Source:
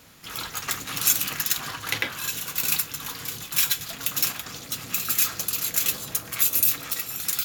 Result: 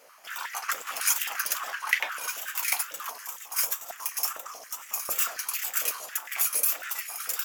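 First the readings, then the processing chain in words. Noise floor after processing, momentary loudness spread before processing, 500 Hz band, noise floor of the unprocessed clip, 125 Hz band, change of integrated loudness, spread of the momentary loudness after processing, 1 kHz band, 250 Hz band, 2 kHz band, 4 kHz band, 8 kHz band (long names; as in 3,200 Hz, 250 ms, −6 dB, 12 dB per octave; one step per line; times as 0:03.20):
−47 dBFS, 11 LU, −2.5 dB, −41 dBFS, below −25 dB, −4.0 dB, 11 LU, +1.5 dB, below −15 dB, 0.0 dB, −7.0 dB, −4.0 dB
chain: gain on a spectral selection 0:03.11–0:05.11, 1,300–5,200 Hz −7 dB
parametric band 3,900 Hz −13 dB 0.22 octaves
tape wow and flutter 140 cents
high-pass on a step sequencer 11 Hz 550–1,900 Hz
level −4.5 dB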